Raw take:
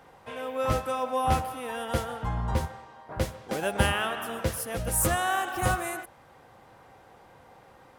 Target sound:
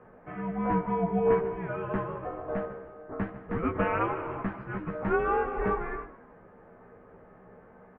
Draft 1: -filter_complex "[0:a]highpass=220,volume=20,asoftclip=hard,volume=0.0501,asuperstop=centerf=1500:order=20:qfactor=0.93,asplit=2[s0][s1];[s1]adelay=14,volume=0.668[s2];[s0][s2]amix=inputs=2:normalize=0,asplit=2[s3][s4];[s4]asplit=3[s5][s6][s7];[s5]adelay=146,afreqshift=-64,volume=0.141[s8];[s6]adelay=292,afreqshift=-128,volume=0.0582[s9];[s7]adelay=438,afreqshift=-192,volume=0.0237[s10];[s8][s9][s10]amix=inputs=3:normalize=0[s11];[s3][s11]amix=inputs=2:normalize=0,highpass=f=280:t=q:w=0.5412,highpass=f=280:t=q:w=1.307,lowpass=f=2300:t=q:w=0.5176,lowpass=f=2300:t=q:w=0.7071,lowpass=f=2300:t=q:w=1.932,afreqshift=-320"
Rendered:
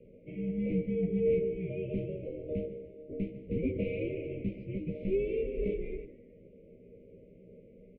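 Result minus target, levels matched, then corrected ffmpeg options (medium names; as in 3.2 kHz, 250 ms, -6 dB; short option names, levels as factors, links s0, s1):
overload inside the chain: distortion +27 dB; 2 kHz band -10.0 dB
-filter_complex "[0:a]highpass=220,volume=5.31,asoftclip=hard,volume=0.188,asplit=2[s0][s1];[s1]adelay=14,volume=0.668[s2];[s0][s2]amix=inputs=2:normalize=0,asplit=2[s3][s4];[s4]asplit=3[s5][s6][s7];[s5]adelay=146,afreqshift=-64,volume=0.141[s8];[s6]adelay=292,afreqshift=-128,volume=0.0582[s9];[s7]adelay=438,afreqshift=-192,volume=0.0237[s10];[s8][s9][s10]amix=inputs=3:normalize=0[s11];[s3][s11]amix=inputs=2:normalize=0,highpass=f=280:t=q:w=0.5412,highpass=f=280:t=q:w=1.307,lowpass=f=2300:t=q:w=0.5176,lowpass=f=2300:t=q:w=0.7071,lowpass=f=2300:t=q:w=1.932,afreqshift=-320"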